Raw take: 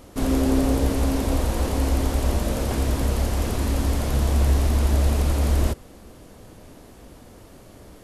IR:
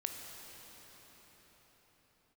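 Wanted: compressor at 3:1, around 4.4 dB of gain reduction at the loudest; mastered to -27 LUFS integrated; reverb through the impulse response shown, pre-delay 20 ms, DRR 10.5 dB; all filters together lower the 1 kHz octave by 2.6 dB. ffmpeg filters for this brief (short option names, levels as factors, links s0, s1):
-filter_complex "[0:a]equalizer=f=1000:t=o:g=-3.5,acompressor=threshold=0.0891:ratio=3,asplit=2[s0][s1];[1:a]atrim=start_sample=2205,adelay=20[s2];[s1][s2]afir=irnorm=-1:irlink=0,volume=0.282[s3];[s0][s3]amix=inputs=2:normalize=0"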